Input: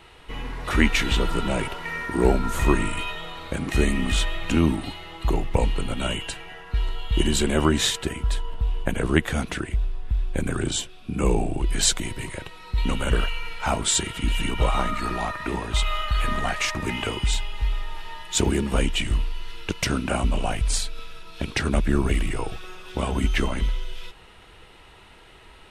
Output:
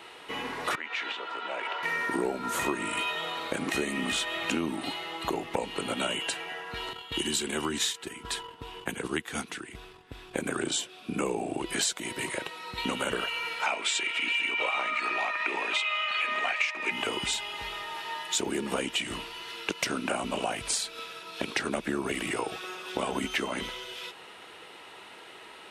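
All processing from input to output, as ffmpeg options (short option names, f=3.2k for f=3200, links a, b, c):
-filter_complex "[0:a]asettb=1/sr,asplit=3[a][b][c];[a]atrim=end=0.754[d];[b]atrim=start=0.75:end=1.83,asetpts=PTS-STARTPTS,afade=t=in:d=0.004:c=qsin,afade=t=out:st=1.076:d=0.004:c=qsin,acompressor=threshold=-26dB:ratio=16:attack=3.2:release=140:knee=1:detection=peak,highpass=630,lowpass=3.2k[e];[c]atrim=start=1.826[f];[d][e]acrossfade=d=0.004:c1=hsin:c2=qsin[g];[g][f]acrossfade=d=0.004:c1=qsin:c2=hsin,asettb=1/sr,asplit=3[h][i][j];[h]atrim=end=6.934[k];[i]atrim=start=6.93:end=10.34,asetpts=PTS-STARTPTS,afade=t=in:d=0.004:c=qsin,afade=t=out:st=3.406:d=0.004:c=qsin,equalizer=f=590:t=o:w=0.33:g=-13,acrossover=split=120|3000[l][m][n];[m]acompressor=threshold=-36dB:ratio=1.5:attack=3.2:release=140:knee=2.83:detection=peak[o];[l][o][n]amix=inputs=3:normalize=0,agate=range=-8dB:threshold=-27dB:ratio=16:release=100:detection=peak[p];[j]atrim=start=10.336[q];[k][p]acrossfade=d=0.004:c1=hsin:c2=qsin[r];[r][q]acrossfade=d=0.004:c1=qsin:c2=hsin,asettb=1/sr,asplit=3[s][t][u];[s]atrim=end=13.664[v];[t]atrim=start=13.66:end=16.91,asetpts=PTS-STARTPTS,afade=t=in:d=0.004:c=qsin,afade=t=out:st=3.246:d=0.004:c=qsin,highpass=380,lowpass=6.7k,equalizer=f=2.4k:t=o:w=0.48:g=14[w];[u]atrim=start=16.906[x];[v][w]acrossfade=d=0.004:c1=hsin:c2=qsin[y];[y][x]acrossfade=d=0.004:c1=qsin:c2=hsin,highpass=290,acompressor=threshold=-30dB:ratio=6,volume=3.5dB"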